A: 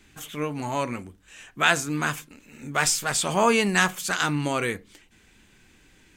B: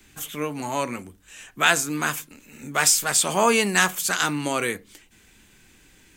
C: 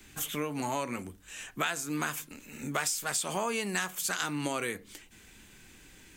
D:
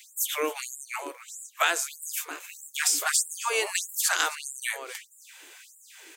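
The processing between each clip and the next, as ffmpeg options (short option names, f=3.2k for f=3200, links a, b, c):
-filter_complex "[0:a]acrossover=split=170|1800|2800[a][b][c][d];[a]acompressor=threshold=-46dB:ratio=6[e];[e][b][c][d]amix=inputs=4:normalize=0,highshelf=f=8k:g=10.5,volume=1dB"
-af "acompressor=threshold=-29dB:ratio=6"
-filter_complex "[0:a]asplit=2[a][b];[b]adelay=268.2,volume=-13dB,highshelf=f=4k:g=-6.04[c];[a][c]amix=inputs=2:normalize=0,afftfilt=real='re*gte(b*sr/1024,280*pow(7100/280,0.5+0.5*sin(2*PI*1.6*pts/sr)))':imag='im*gte(b*sr/1024,280*pow(7100/280,0.5+0.5*sin(2*PI*1.6*pts/sr)))':win_size=1024:overlap=0.75,volume=7.5dB"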